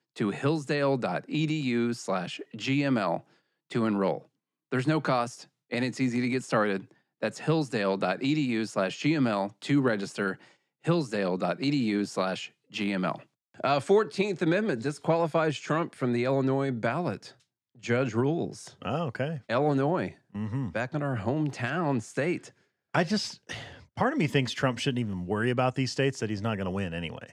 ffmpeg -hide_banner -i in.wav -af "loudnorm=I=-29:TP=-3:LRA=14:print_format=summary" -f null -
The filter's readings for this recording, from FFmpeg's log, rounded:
Input Integrated:    -28.9 LUFS
Input True Peak:      -9.3 dBTP
Input LRA:             2.2 LU
Input Threshold:     -39.2 LUFS